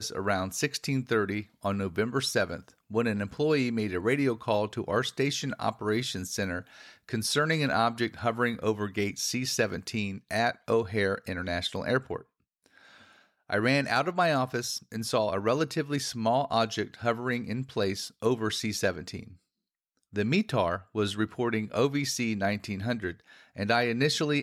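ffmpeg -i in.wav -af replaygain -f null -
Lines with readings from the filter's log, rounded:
track_gain = +9.1 dB
track_peak = 0.188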